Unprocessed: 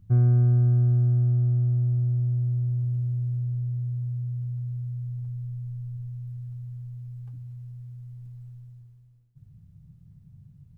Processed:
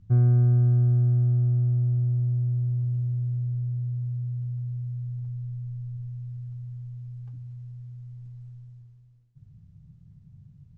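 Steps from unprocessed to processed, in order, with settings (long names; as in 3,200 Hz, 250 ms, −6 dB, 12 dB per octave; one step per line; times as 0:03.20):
low-pass filter 7,300 Hz 24 dB per octave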